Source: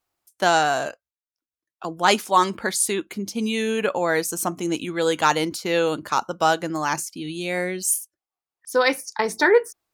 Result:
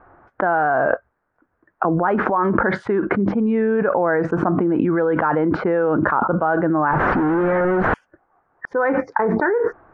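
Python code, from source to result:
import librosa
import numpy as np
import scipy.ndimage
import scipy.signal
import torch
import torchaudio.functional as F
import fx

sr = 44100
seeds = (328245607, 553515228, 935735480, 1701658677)

y = fx.clip_1bit(x, sr, at=(6.91, 7.94))
y = scipy.signal.sosfilt(scipy.signal.cheby1(4, 1.0, 1600.0, 'lowpass', fs=sr, output='sos'), y)
y = fx.env_flatten(y, sr, amount_pct=100)
y = y * 10.0 ** (-6.0 / 20.0)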